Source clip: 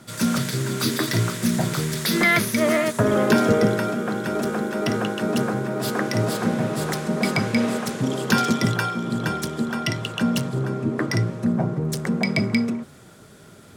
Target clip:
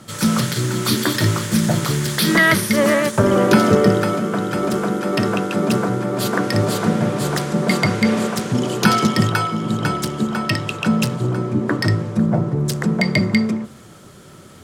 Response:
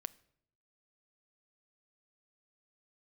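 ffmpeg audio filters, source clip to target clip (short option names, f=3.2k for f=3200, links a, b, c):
-filter_complex "[0:a]asetrate=41454,aresample=44100,asplit=2[a][b];[1:a]atrim=start_sample=2205[c];[b][c]afir=irnorm=-1:irlink=0,volume=5dB[d];[a][d]amix=inputs=2:normalize=0,volume=-2.5dB"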